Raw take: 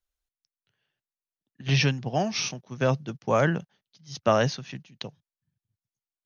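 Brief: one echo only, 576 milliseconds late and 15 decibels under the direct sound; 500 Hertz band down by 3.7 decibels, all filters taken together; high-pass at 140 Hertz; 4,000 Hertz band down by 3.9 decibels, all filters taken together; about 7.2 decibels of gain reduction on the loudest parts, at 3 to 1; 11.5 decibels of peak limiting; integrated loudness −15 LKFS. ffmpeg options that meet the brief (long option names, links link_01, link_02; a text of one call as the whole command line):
ffmpeg -i in.wav -af "highpass=140,equalizer=frequency=500:width_type=o:gain=-4.5,equalizer=frequency=4000:width_type=o:gain=-5.5,acompressor=threshold=-28dB:ratio=3,alimiter=level_in=1.5dB:limit=-24dB:level=0:latency=1,volume=-1.5dB,aecho=1:1:576:0.178,volume=22.5dB" out.wav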